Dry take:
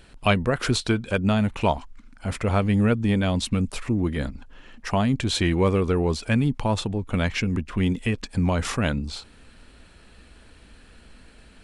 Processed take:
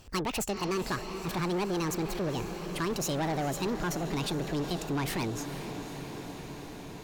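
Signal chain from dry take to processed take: gliding tape speed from 183% -> 148%; echo that smears into a reverb 470 ms, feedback 76%, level -13 dB; saturation -23 dBFS, distortion -9 dB; trim -4 dB

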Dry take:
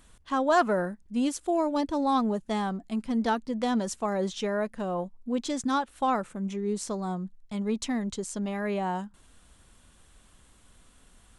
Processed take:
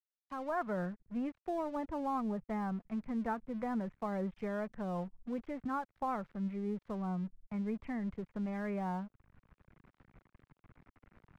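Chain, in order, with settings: fade-in on the opening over 0.82 s; elliptic low-pass 2.3 kHz, stop band 50 dB; resonant low shelf 200 Hz +8 dB, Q 1.5; crossover distortion -48 dBFS; three bands compressed up and down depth 40%; trim -8 dB

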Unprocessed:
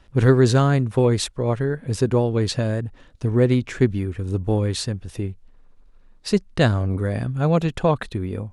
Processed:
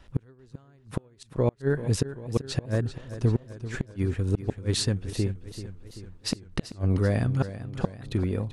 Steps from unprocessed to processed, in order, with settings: wow and flutter 15 cents; inverted gate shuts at -12 dBFS, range -39 dB; modulated delay 388 ms, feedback 57%, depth 62 cents, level -13 dB

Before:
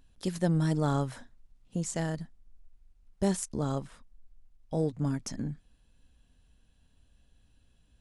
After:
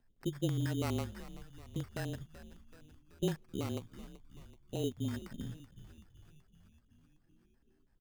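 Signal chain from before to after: LFO low-pass square 6.1 Hz 390–2000 Hz; frequency shift -27 Hz; sample-rate reducer 3.4 kHz, jitter 0%; on a send: frequency-shifting echo 380 ms, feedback 62%, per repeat -71 Hz, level -15 dB; on the sum: trim -8.5 dB

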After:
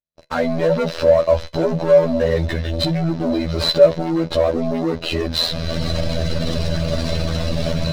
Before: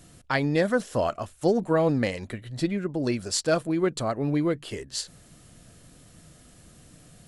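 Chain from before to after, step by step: CVSD coder 32 kbps; recorder AGC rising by 57 dB/s; gate -39 dBFS, range -39 dB; bass shelf 130 Hz +4 dB; in parallel at +2 dB: level held to a coarse grid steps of 10 dB; on the sum: waveshaping leveller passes 5; robot voice 89.4 Hz; saturation -1.5 dBFS, distortion -11 dB; feedback comb 77 Hz, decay 0.2 s, harmonics all, mix 40%; speed mistake 48 kHz file played as 44.1 kHz; small resonant body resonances 600/4000 Hz, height 16 dB, ringing for 45 ms; trim -6 dB

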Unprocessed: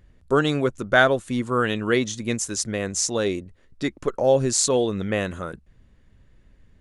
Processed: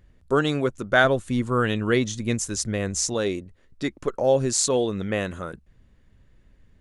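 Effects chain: 1.04–3.14 s: bass shelf 120 Hz +10.5 dB; trim -1.5 dB

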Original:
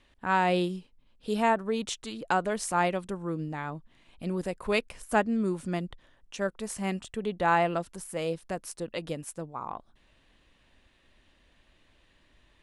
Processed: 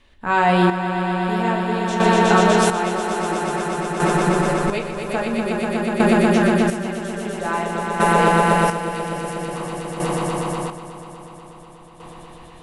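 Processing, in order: echo with a slow build-up 122 ms, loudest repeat 5, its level -3.5 dB; on a send at -2 dB: reverberation RT60 0.40 s, pre-delay 4 ms; on the sum: square tremolo 0.5 Hz, depth 60%, duty 35%; trim +5.5 dB

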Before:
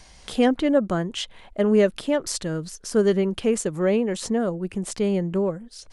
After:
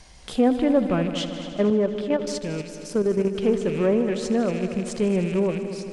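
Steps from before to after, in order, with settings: rattle on loud lows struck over -38 dBFS, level -28 dBFS; low-pass that closes with the level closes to 1.3 kHz, closed at -15 dBFS; bass shelf 470 Hz +2.5 dB; on a send: multi-head delay 78 ms, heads all three, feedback 70%, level -16 dB; 1.70–3.43 s: on the sum: level held to a coarse grid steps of 9 dB; in parallel at -8 dB: one-sided clip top -20.5 dBFS; on the sum: trim -4 dB

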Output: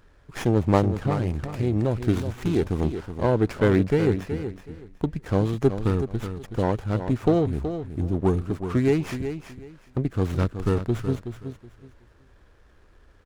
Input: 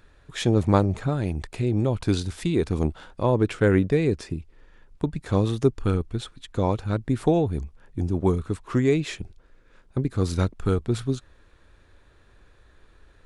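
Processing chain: on a send: feedback delay 373 ms, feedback 22%, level -9.5 dB; on the sum: sliding maximum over 9 samples

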